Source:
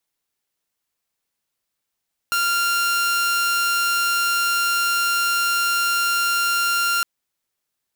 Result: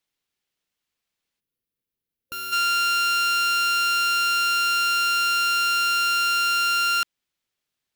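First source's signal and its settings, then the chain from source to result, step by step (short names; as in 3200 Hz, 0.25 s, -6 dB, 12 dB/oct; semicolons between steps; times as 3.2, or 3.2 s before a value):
tone saw 1390 Hz -15.5 dBFS 4.71 s
spectral gain 1.4–2.52, 520–10000 Hz -11 dB; EQ curve 250 Hz 0 dB, 920 Hz -4 dB, 3100 Hz +2 dB, 10000 Hz -7 dB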